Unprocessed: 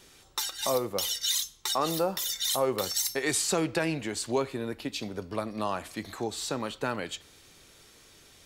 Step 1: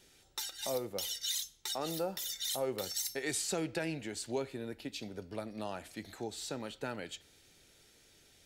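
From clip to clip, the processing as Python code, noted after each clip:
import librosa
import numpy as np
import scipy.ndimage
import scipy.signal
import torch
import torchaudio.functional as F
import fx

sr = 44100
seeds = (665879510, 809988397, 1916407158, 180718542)

y = fx.peak_eq(x, sr, hz=1100.0, db=-13.0, octaves=0.26)
y = F.gain(torch.from_numpy(y), -7.5).numpy()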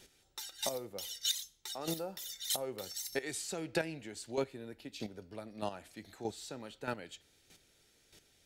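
y = fx.chopper(x, sr, hz=1.6, depth_pct=65, duty_pct=10)
y = F.gain(torch.from_numpy(y), 4.0).numpy()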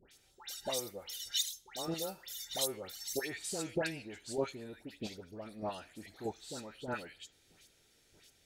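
y = fx.dispersion(x, sr, late='highs', ms=116.0, hz=1700.0)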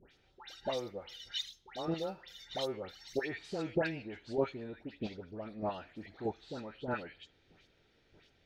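y = fx.air_absorb(x, sr, metres=270.0)
y = F.gain(torch.from_numpy(y), 3.5).numpy()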